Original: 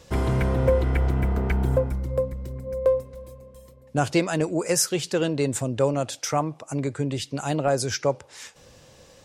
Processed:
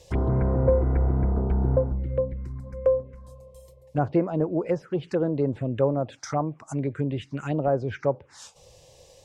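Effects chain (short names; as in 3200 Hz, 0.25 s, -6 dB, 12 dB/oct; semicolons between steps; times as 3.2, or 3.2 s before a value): treble ducked by the level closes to 1100 Hz, closed at -20.5 dBFS; envelope phaser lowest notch 220 Hz, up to 3600 Hz, full sweep at -18.5 dBFS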